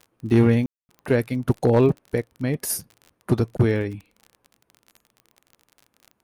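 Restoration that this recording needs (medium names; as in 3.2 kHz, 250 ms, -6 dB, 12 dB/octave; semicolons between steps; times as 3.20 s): clip repair -9.5 dBFS; de-click; room tone fill 0.66–0.89 s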